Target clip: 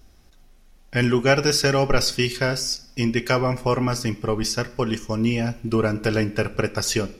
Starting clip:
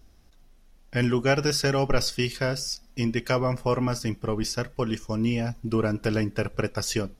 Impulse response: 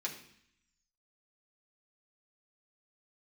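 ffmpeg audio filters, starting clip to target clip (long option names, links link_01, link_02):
-filter_complex "[0:a]asplit=2[link_01][link_02];[1:a]atrim=start_sample=2205,lowshelf=frequency=230:gain=-10[link_03];[link_02][link_03]afir=irnorm=-1:irlink=0,volume=-8dB[link_04];[link_01][link_04]amix=inputs=2:normalize=0,volume=3dB"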